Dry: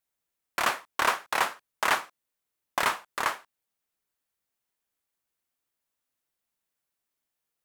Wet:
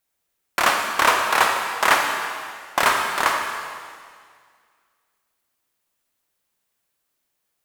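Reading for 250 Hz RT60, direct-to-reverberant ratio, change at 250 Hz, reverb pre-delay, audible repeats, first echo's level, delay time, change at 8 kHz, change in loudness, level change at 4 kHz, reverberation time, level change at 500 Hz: 2.0 s, 2.0 dB, +9.0 dB, 29 ms, no echo audible, no echo audible, no echo audible, +9.0 dB, +8.5 dB, +9.0 dB, 2.0 s, +9.0 dB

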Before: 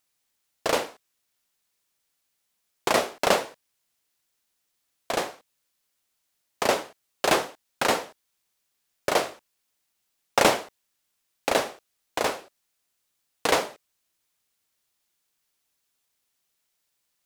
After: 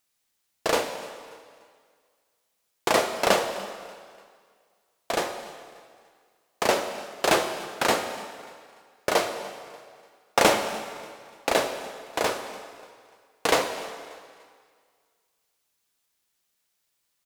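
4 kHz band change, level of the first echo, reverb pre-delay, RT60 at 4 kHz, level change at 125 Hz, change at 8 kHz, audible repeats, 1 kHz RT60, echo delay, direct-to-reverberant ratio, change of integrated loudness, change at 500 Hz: +1.0 dB, −21.0 dB, 3 ms, 1.8 s, +0.5 dB, +1.0 dB, 2, 2.0 s, 293 ms, 6.5 dB, 0.0 dB, +1.0 dB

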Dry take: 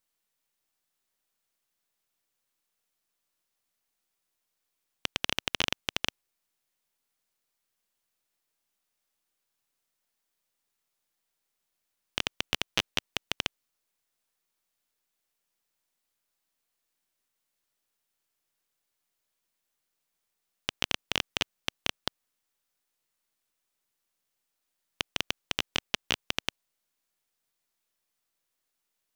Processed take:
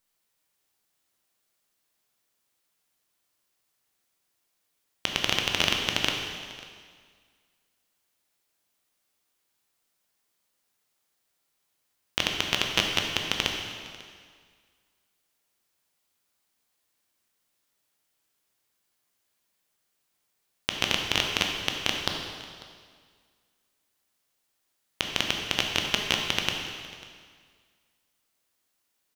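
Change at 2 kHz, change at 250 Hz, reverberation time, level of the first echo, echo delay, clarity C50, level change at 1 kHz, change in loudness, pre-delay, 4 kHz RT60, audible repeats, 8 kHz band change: +6.0 dB, +6.5 dB, 1.9 s, −20.5 dB, 545 ms, 3.0 dB, +6.0 dB, +5.5 dB, 7 ms, 1.8 s, 1, +5.5 dB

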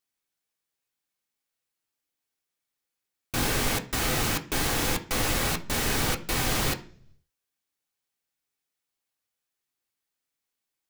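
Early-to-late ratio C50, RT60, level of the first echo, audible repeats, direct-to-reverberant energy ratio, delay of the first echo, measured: 15.5 dB, 0.50 s, no echo audible, no echo audible, 3.0 dB, no echo audible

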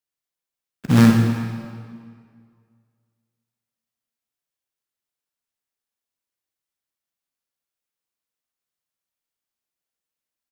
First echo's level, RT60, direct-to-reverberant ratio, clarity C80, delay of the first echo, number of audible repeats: −11.0 dB, 2.0 s, 2.0 dB, 5.0 dB, 62 ms, 1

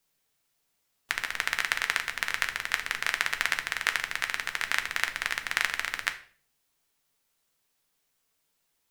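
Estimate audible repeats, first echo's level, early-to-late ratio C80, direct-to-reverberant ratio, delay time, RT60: no echo audible, no echo audible, 17.5 dB, 6.0 dB, no echo audible, 0.45 s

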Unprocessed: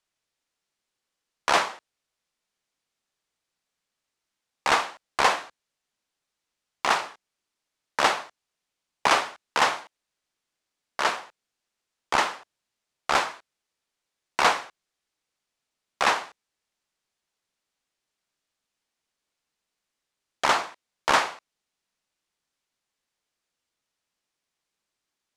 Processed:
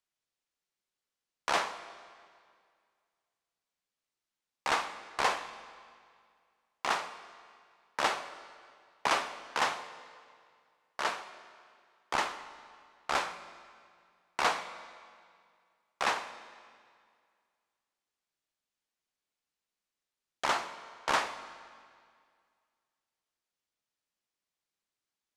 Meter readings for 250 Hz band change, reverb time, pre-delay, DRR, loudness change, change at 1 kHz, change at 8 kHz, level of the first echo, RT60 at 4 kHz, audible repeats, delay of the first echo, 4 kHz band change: −7.5 dB, 2.1 s, 18 ms, 11.0 dB, −8.5 dB, −7.5 dB, −7.5 dB, no echo audible, 1.8 s, no echo audible, no echo audible, −7.5 dB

